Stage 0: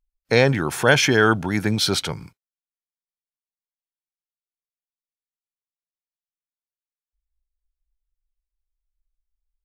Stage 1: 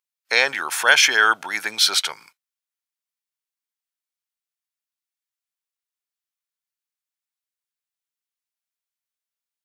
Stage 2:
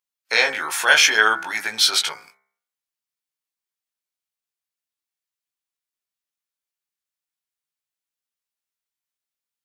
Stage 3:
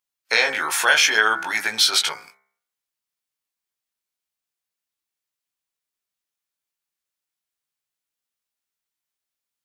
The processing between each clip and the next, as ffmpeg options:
ffmpeg -i in.wav -af "highpass=1100,volume=5dB" out.wav
ffmpeg -i in.wav -af "bandreject=frequency=66.45:width_type=h:width=4,bandreject=frequency=132.9:width_type=h:width=4,bandreject=frequency=199.35:width_type=h:width=4,bandreject=frequency=265.8:width_type=h:width=4,bandreject=frequency=332.25:width_type=h:width=4,bandreject=frequency=398.7:width_type=h:width=4,bandreject=frequency=465.15:width_type=h:width=4,bandreject=frequency=531.6:width_type=h:width=4,bandreject=frequency=598.05:width_type=h:width=4,bandreject=frequency=664.5:width_type=h:width=4,bandreject=frequency=730.95:width_type=h:width=4,bandreject=frequency=797.4:width_type=h:width=4,bandreject=frequency=863.85:width_type=h:width=4,bandreject=frequency=930.3:width_type=h:width=4,bandreject=frequency=996.75:width_type=h:width=4,bandreject=frequency=1063.2:width_type=h:width=4,bandreject=frequency=1129.65:width_type=h:width=4,bandreject=frequency=1196.1:width_type=h:width=4,bandreject=frequency=1262.55:width_type=h:width=4,bandreject=frequency=1329:width_type=h:width=4,bandreject=frequency=1395.45:width_type=h:width=4,bandreject=frequency=1461.9:width_type=h:width=4,bandreject=frequency=1528.35:width_type=h:width=4,bandreject=frequency=1594.8:width_type=h:width=4,bandreject=frequency=1661.25:width_type=h:width=4,bandreject=frequency=1727.7:width_type=h:width=4,bandreject=frequency=1794.15:width_type=h:width=4,bandreject=frequency=1860.6:width_type=h:width=4,bandreject=frequency=1927.05:width_type=h:width=4,bandreject=frequency=1993.5:width_type=h:width=4,bandreject=frequency=2059.95:width_type=h:width=4,bandreject=frequency=2126.4:width_type=h:width=4,bandreject=frequency=2192.85:width_type=h:width=4,bandreject=frequency=2259.3:width_type=h:width=4,flanger=delay=17.5:depth=2.1:speed=0.62,volume=3.5dB" out.wav
ffmpeg -i in.wav -af "acompressor=threshold=-17dB:ratio=2.5,volume=2.5dB" out.wav

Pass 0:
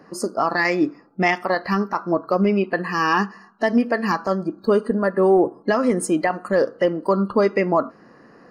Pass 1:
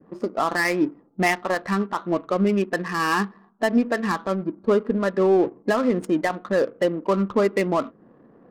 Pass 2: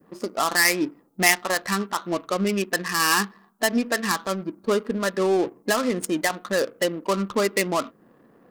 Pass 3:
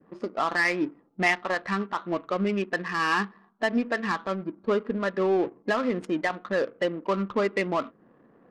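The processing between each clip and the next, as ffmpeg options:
ffmpeg -i in.wav -af "adynamicequalizer=threshold=0.0224:dfrequency=780:dqfactor=1.5:tfrequency=780:tqfactor=1.5:attack=5:release=100:ratio=0.375:range=2.5:mode=cutabove:tftype=bell,adynamicsmooth=sensitivity=3.5:basefreq=620,volume=-1.5dB" out.wav
ffmpeg -i in.wav -af "crystalizer=i=7:c=0,volume=-4dB" out.wav
ffmpeg -i in.wav -af "lowpass=2700,volume=-2.5dB" out.wav

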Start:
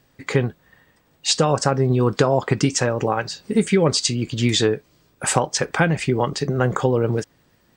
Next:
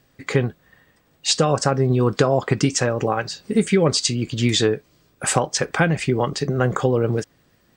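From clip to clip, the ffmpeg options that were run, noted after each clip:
ffmpeg -i in.wav -af "bandreject=frequency=910:width=12" out.wav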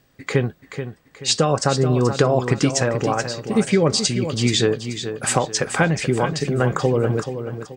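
ffmpeg -i in.wav -af "aecho=1:1:431|862|1293|1724:0.335|0.124|0.0459|0.017" out.wav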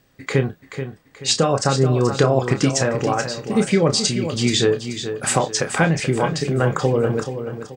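ffmpeg -i in.wav -filter_complex "[0:a]asplit=2[link_01][link_02];[link_02]adelay=30,volume=-8.5dB[link_03];[link_01][link_03]amix=inputs=2:normalize=0" out.wav

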